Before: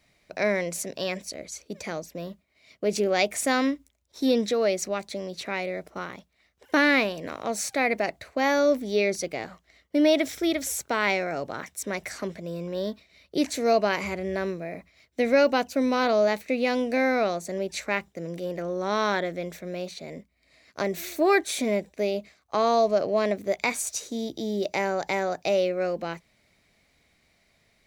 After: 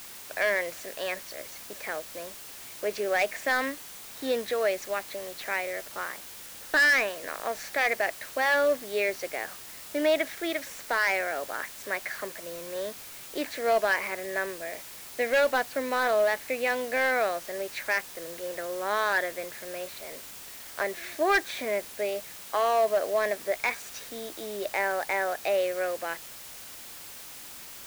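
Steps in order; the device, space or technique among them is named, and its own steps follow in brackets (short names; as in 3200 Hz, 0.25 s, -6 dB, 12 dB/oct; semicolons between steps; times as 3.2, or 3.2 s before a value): drive-through speaker (BPF 520–3100 Hz; bell 1700 Hz +9 dB 0.28 oct; hard clip -18 dBFS, distortion -13 dB; white noise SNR 14 dB)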